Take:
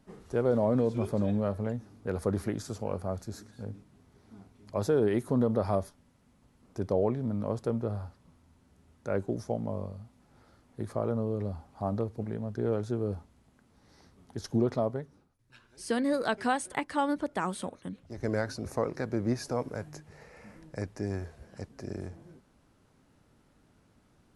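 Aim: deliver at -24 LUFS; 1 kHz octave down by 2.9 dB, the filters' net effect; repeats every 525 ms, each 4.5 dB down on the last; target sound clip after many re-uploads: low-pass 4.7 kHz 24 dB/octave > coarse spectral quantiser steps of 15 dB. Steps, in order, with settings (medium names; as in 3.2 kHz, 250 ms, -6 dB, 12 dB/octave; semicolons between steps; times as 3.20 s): low-pass 4.7 kHz 24 dB/octave; peaking EQ 1 kHz -4 dB; feedback delay 525 ms, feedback 60%, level -4.5 dB; coarse spectral quantiser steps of 15 dB; trim +8.5 dB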